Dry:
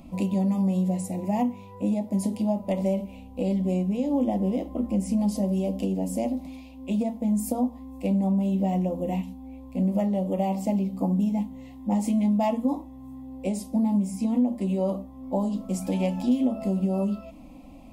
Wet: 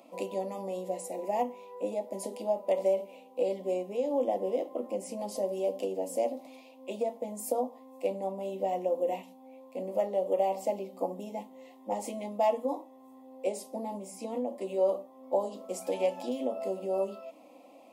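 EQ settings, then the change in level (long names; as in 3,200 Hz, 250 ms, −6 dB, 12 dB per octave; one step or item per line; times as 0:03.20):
four-pole ladder high-pass 380 Hz, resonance 45%
+5.5 dB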